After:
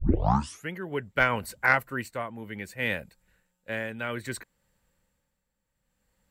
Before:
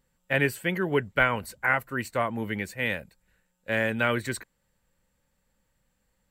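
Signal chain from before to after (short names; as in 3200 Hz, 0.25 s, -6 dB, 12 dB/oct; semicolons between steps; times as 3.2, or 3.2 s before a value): tape start at the beginning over 0.73 s; tremolo 0.63 Hz, depth 70%; added harmonics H 3 -22 dB, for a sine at -9.5 dBFS; gain +4 dB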